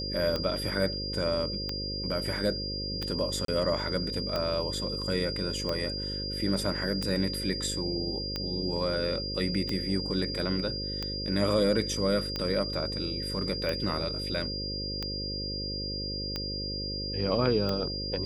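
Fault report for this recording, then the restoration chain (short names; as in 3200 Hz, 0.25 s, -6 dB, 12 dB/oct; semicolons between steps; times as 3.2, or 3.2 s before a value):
buzz 50 Hz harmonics 11 -37 dBFS
tick 45 rpm -17 dBFS
tone 4800 Hz -34 dBFS
3.45–3.48 gap 33 ms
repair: de-click; de-hum 50 Hz, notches 11; notch 4800 Hz, Q 30; interpolate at 3.45, 33 ms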